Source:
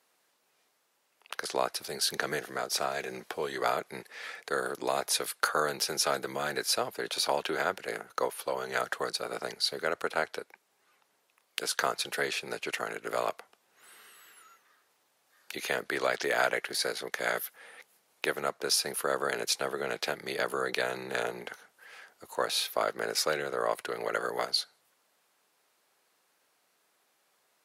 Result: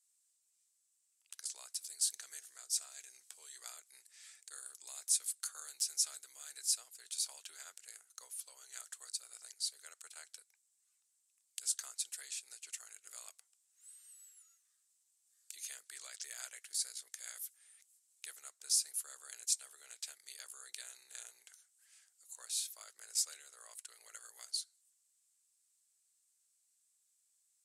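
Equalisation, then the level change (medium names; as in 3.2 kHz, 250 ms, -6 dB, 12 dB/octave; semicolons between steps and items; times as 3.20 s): band-pass filter 7.9 kHz, Q 4.1; tilt EQ +2 dB/octave; 0.0 dB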